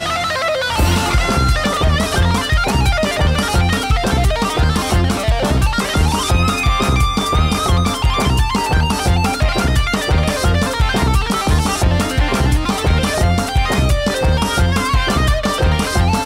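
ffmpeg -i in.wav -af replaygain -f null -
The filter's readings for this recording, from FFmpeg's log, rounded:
track_gain = +0.6 dB
track_peak = 0.416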